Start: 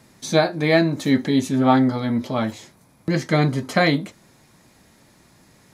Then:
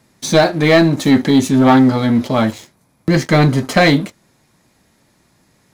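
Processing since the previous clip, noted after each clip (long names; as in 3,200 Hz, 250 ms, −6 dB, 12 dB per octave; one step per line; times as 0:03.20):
leveller curve on the samples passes 2
level +1 dB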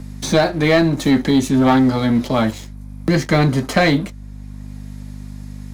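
mains hum 50 Hz, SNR 19 dB
multiband upward and downward compressor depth 40%
level −3 dB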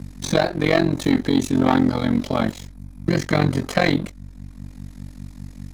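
amplitude modulation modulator 45 Hz, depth 90%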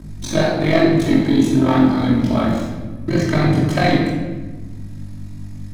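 rectangular room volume 980 cubic metres, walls mixed, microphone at 2.8 metres
level −4 dB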